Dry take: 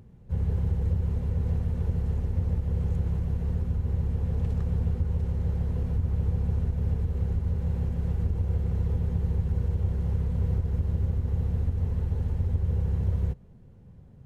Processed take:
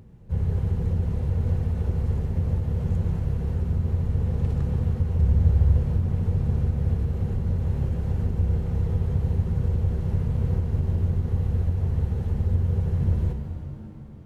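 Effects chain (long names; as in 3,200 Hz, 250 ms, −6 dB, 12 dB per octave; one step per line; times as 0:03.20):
0:05.18–0:05.78: parametric band 70 Hz +10 dB 0.88 octaves
reverb with rising layers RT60 2.8 s, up +7 semitones, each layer −8 dB, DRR 5.5 dB
level +2.5 dB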